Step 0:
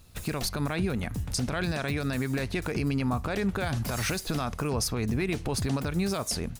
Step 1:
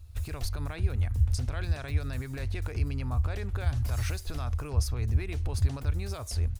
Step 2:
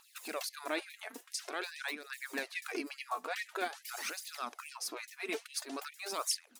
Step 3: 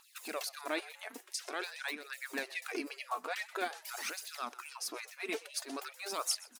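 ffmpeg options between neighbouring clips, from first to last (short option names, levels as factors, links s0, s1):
-af "lowshelf=f=120:t=q:w=3:g=13.5,volume=0.376"
-af "aphaser=in_gain=1:out_gain=1:delay=4.7:decay=0.52:speed=0.47:type=triangular,acompressor=threshold=0.0355:ratio=6,afftfilt=real='re*gte(b*sr/1024,210*pow(1800/210,0.5+0.5*sin(2*PI*2.4*pts/sr)))':imag='im*gte(b*sr/1024,210*pow(1800/210,0.5+0.5*sin(2*PI*2.4*pts/sr)))':win_size=1024:overlap=0.75,volume=2"
-filter_complex "[0:a]asplit=4[s0][s1][s2][s3];[s1]adelay=125,afreqshift=120,volume=0.1[s4];[s2]adelay=250,afreqshift=240,volume=0.0372[s5];[s3]adelay=375,afreqshift=360,volume=0.0136[s6];[s0][s4][s5][s6]amix=inputs=4:normalize=0"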